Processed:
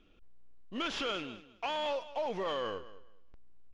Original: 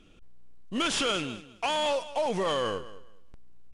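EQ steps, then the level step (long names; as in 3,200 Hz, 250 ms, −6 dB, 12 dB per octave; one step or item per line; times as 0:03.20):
moving average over 5 samples
parametric band 140 Hz −7 dB 1.1 octaves
−6.0 dB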